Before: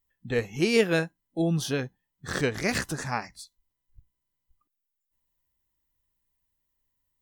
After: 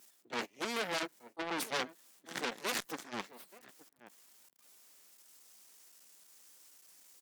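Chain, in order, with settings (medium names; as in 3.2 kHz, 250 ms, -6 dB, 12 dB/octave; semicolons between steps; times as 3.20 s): jump at every zero crossing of -32.5 dBFS; gate -27 dBFS, range -7 dB; Chebyshev shaper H 4 -12 dB, 7 -17 dB, 8 -15 dB, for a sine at -9 dBFS; reverse; compression 8:1, threshold -33 dBFS, peak gain reduction 18.5 dB; reverse; high-pass 190 Hz 24 dB/octave; echo from a far wall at 150 m, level -26 dB; in parallel at -6 dB: sine folder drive 6 dB, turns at -20 dBFS; on the sum: transformer saturation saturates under 3 kHz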